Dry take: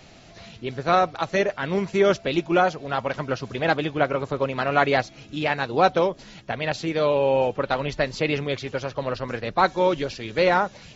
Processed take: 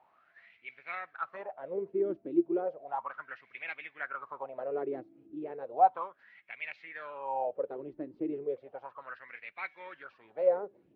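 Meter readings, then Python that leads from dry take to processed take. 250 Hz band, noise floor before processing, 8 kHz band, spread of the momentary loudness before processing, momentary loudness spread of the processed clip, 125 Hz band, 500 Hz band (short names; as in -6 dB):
-10.5 dB, -48 dBFS, n/a, 9 LU, 17 LU, -28.5 dB, -12.0 dB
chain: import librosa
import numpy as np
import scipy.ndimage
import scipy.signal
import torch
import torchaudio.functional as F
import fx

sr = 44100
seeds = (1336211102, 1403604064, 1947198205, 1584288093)

y = scipy.signal.sosfilt(scipy.signal.butter(2, 2900.0, 'lowpass', fs=sr, output='sos'), x)
y = fx.wah_lfo(y, sr, hz=0.34, low_hz=310.0, high_hz=2300.0, q=9.1)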